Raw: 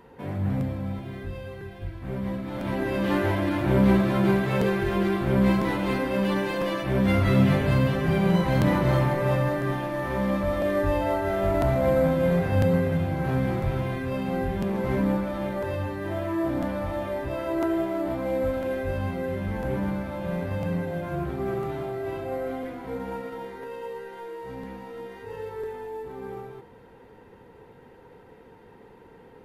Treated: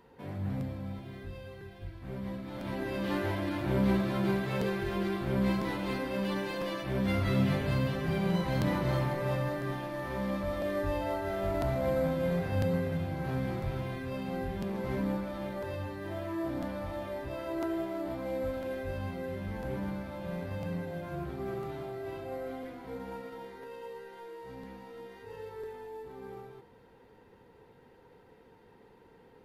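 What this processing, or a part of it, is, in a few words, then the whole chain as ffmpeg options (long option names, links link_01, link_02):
presence and air boost: -af "equalizer=frequency=4500:width_type=o:width=0.92:gain=5,highshelf=frequency=11000:gain=3.5,volume=-8dB"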